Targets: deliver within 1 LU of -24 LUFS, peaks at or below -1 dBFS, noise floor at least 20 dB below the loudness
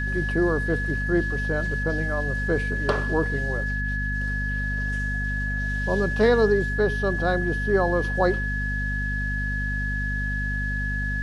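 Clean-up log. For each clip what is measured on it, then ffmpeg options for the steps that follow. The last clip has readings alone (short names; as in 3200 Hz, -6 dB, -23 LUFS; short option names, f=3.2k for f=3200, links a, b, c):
hum 50 Hz; harmonics up to 250 Hz; hum level -25 dBFS; steady tone 1700 Hz; tone level -28 dBFS; loudness -25.0 LUFS; peak -9.0 dBFS; loudness target -24.0 LUFS
-> -af "bandreject=f=50:t=h:w=4,bandreject=f=100:t=h:w=4,bandreject=f=150:t=h:w=4,bandreject=f=200:t=h:w=4,bandreject=f=250:t=h:w=4"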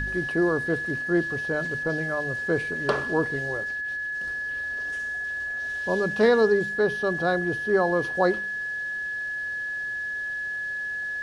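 hum none; steady tone 1700 Hz; tone level -28 dBFS
-> -af "bandreject=f=1.7k:w=30"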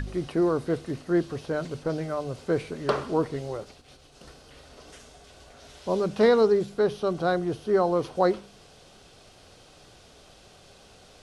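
steady tone none; loudness -26.5 LUFS; peak -9.5 dBFS; loudness target -24.0 LUFS
-> -af "volume=2.5dB"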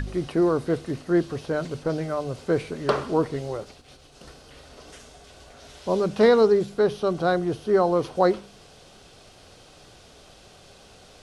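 loudness -24.0 LUFS; peak -7.0 dBFS; noise floor -51 dBFS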